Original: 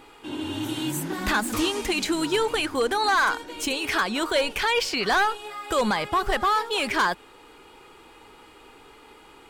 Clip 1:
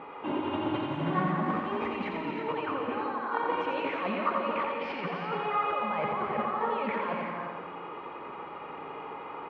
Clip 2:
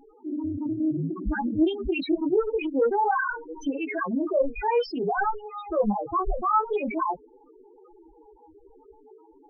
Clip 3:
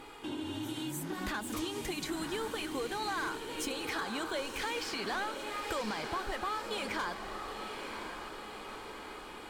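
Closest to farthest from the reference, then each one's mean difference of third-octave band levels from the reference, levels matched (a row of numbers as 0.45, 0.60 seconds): 3, 1, 2; 8.5, 13.5, 20.0 decibels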